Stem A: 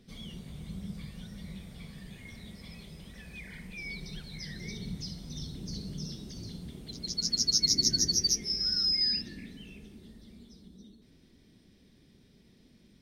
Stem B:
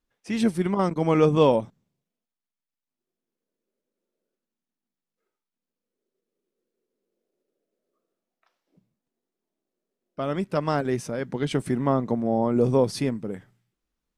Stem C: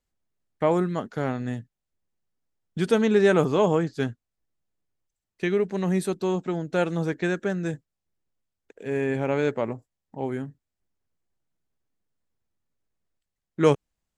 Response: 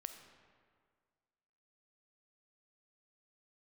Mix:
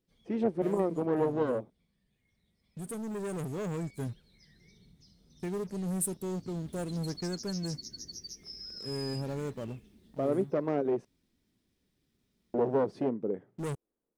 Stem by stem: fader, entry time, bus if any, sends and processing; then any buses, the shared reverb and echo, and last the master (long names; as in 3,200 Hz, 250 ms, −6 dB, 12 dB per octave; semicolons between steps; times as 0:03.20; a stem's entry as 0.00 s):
0:06.11 −20.5 dB → 0:06.74 −8.5 dB, 0.00 s, no send, downward compressor 6 to 1, threshold −34 dBFS, peak gain reduction 12.5 dB; bit reduction 11 bits; flanger 0.84 Hz, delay 2 ms, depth 1.8 ms, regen −77%
+2.0 dB, 0.00 s, muted 0:11.05–0:12.54, no send, wavefolder on the positive side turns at −22 dBFS; resonant band-pass 420 Hz, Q 1.7
−17.0 dB, 0.00 s, no send, drawn EQ curve 100 Hz 0 dB, 5,000 Hz −25 dB, 9,000 Hz +1 dB; leveller curve on the samples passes 3; high-shelf EQ 2,900 Hz +11 dB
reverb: not used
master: speech leveller within 5 dB 2 s